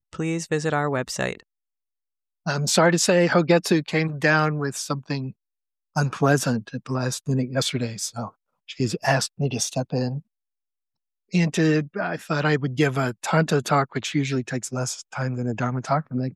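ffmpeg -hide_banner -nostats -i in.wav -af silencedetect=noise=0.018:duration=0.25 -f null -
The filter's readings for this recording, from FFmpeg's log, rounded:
silence_start: 1.40
silence_end: 2.46 | silence_duration: 1.06
silence_start: 5.31
silence_end: 5.96 | silence_duration: 0.65
silence_start: 8.29
silence_end: 8.69 | silence_duration: 0.40
silence_start: 10.20
silence_end: 11.33 | silence_duration: 1.14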